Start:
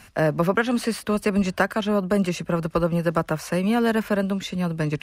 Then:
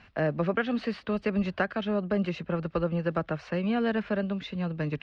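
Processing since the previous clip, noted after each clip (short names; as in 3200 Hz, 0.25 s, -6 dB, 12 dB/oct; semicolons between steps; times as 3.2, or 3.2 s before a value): LPF 4000 Hz 24 dB/oct; dynamic EQ 1000 Hz, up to -7 dB, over -43 dBFS, Q 5; gain -6 dB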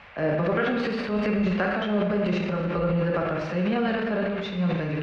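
band noise 560–2600 Hz -50 dBFS; plate-style reverb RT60 1.3 s, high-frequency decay 0.85×, pre-delay 0 ms, DRR 0 dB; transient shaper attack -2 dB, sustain +8 dB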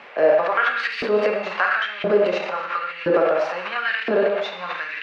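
LFO high-pass saw up 0.98 Hz 310–2400 Hz; gain +4.5 dB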